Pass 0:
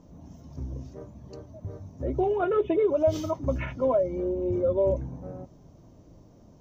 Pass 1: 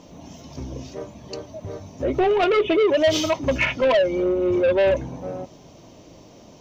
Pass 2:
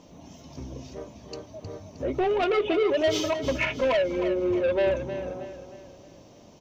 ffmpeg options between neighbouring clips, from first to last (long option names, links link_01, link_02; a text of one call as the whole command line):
ffmpeg -i in.wav -filter_complex "[0:a]asplit=2[link_01][link_02];[link_02]highpass=frequency=720:poles=1,volume=18dB,asoftclip=type=tanh:threshold=-13.5dB[link_03];[link_01][link_03]amix=inputs=2:normalize=0,lowpass=frequency=2500:poles=1,volume=-6dB,highshelf=frequency=2000:width_type=q:width=1.5:gain=8,volume=3dB" out.wav
ffmpeg -i in.wav -af "aecho=1:1:312|624|936|1248|1560:0.299|0.128|0.0552|0.0237|0.0102,volume=-5.5dB" out.wav